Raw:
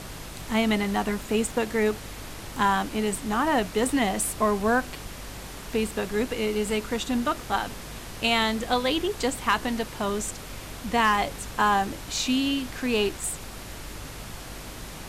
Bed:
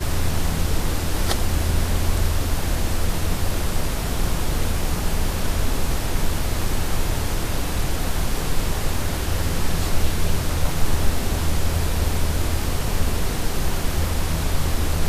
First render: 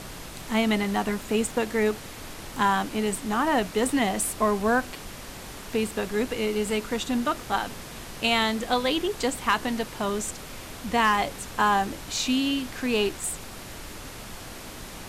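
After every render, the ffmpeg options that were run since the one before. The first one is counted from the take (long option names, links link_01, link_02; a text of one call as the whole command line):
ffmpeg -i in.wav -af "bandreject=frequency=50:width_type=h:width=4,bandreject=frequency=100:width_type=h:width=4,bandreject=frequency=150:width_type=h:width=4" out.wav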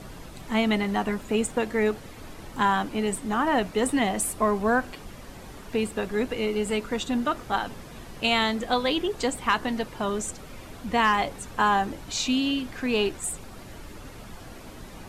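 ffmpeg -i in.wav -af "afftdn=noise_reduction=9:noise_floor=-41" out.wav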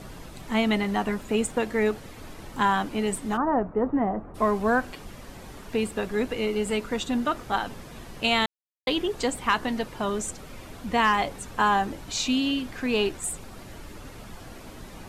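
ffmpeg -i in.wav -filter_complex "[0:a]asplit=3[link_01][link_02][link_03];[link_01]afade=type=out:start_time=3.36:duration=0.02[link_04];[link_02]lowpass=frequency=1300:width=0.5412,lowpass=frequency=1300:width=1.3066,afade=type=in:start_time=3.36:duration=0.02,afade=type=out:start_time=4.34:duration=0.02[link_05];[link_03]afade=type=in:start_time=4.34:duration=0.02[link_06];[link_04][link_05][link_06]amix=inputs=3:normalize=0,asplit=3[link_07][link_08][link_09];[link_07]atrim=end=8.46,asetpts=PTS-STARTPTS,afade=type=out:start_time=8.456:duration=0.004:curve=hsin[link_10];[link_08]atrim=start=8.46:end=8.87,asetpts=PTS-STARTPTS,volume=0[link_11];[link_09]atrim=start=8.87,asetpts=PTS-STARTPTS,afade=type=in:duration=0.004:curve=hsin[link_12];[link_10][link_11][link_12]concat=n=3:v=0:a=1" out.wav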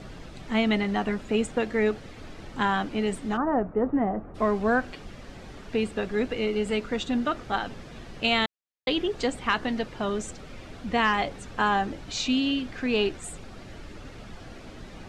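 ffmpeg -i in.wav -af "lowpass=5600,equalizer=frequency=980:width=3.5:gain=-5" out.wav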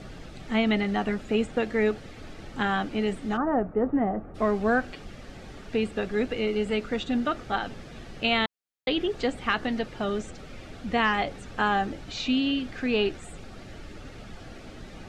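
ffmpeg -i in.wav -filter_complex "[0:a]bandreject=frequency=1000:width=10,acrossover=split=4600[link_01][link_02];[link_02]acompressor=threshold=-50dB:ratio=4:attack=1:release=60[link_03];[link_01][link_03]amix=inputs=2:normalize=0" out.wav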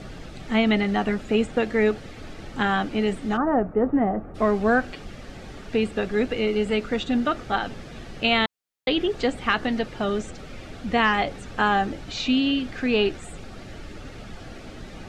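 ffmpeg -i in.wav -af "volume=3.5dB" out.wav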